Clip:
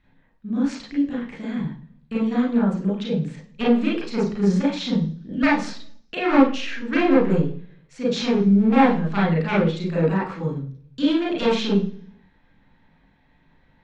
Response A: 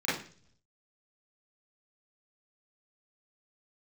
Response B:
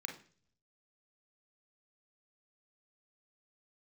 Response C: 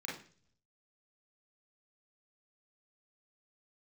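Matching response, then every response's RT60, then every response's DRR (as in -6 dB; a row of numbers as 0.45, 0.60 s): C; 0.45, 0.45, 0.45 s; -12.0, 2.5, -5.0 dB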